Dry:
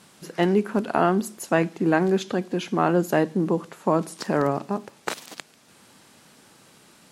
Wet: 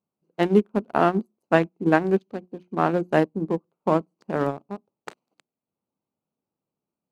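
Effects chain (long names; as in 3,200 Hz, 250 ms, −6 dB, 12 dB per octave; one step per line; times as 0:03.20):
adaptive Wiener filter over 25 samples
mains-hum notches 60/120/180/240/300/360 Hz
expander for the loud parts 2.5 to 1, over −40 dBFS
level +5 dB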